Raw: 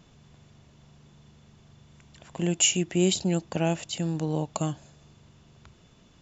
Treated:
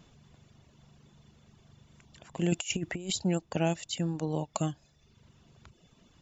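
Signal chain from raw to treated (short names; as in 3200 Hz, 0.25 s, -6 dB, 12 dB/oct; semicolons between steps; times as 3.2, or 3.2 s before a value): reverb removal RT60 0.87 s; 2.52–3.14 negative-ratio compressor -30 dBFS, ratio -0.5; gain -1.5 dB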